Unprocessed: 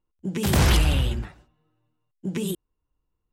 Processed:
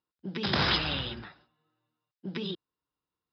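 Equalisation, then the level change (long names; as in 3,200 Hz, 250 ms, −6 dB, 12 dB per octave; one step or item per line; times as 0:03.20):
high-pass filter 140 Hz 12 dB per octave
Chebyshev low-pass with heavy ripple 5,200 Hz, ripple 6 dB
high-shelf EQ 3,100 Hz +10 dB
−1.5 dB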